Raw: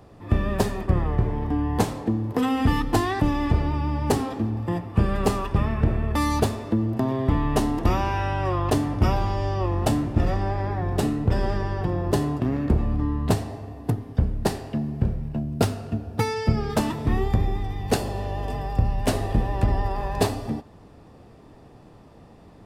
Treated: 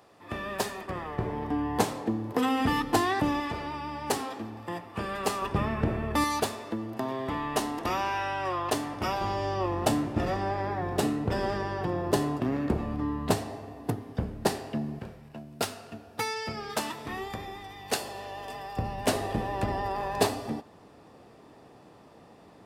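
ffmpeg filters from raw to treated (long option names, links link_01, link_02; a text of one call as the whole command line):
ffmpeg -i in.wav -af "asetnsamples=nb_out_samples=441:pad=0,asendcmd='1.18 highpass f 350;3.4 highpass f 910;5.42 highpass f 230;6.24 highpass f 790;9.21 highpass f 300;14.99 highpass f 1200;18.77 highpass f 340',highpass=frequency=1000:poles=1" out.wav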